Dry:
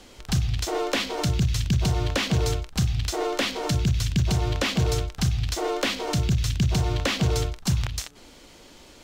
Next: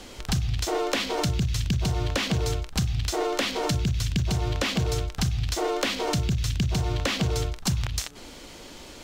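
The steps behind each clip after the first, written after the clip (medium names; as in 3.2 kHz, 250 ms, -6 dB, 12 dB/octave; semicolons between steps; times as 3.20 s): compression 3:1, threshold -30 dBFS, peak gain reduction 9.5 dB; trim +5.5 dB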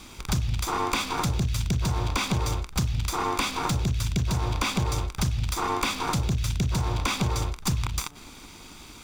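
comb filter that takes the minimum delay 0.83 ms; dynamic bell 980 Hz, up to +6 dB, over -46 dBFS, Q 2.3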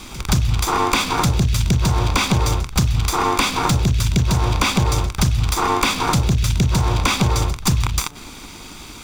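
pre-echo 174 ms -18 dB; trim +8.5 dB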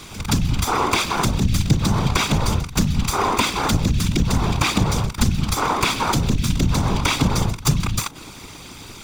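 whisper effect; trim -1.5 dB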